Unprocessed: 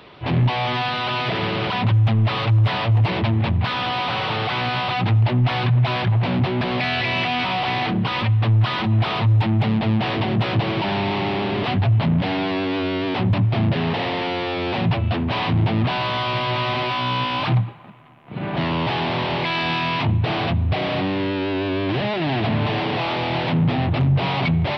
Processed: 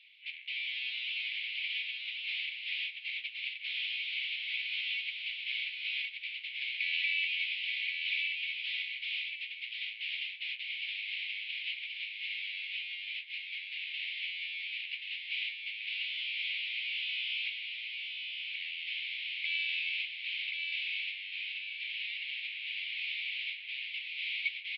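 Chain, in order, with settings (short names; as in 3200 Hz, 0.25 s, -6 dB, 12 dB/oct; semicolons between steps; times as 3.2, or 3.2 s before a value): Chebyshev high-pass 2200 Hz, order 6; air absorption 410 m; on a send: feedback echo 1.079 s, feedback 30%, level -3.5 dB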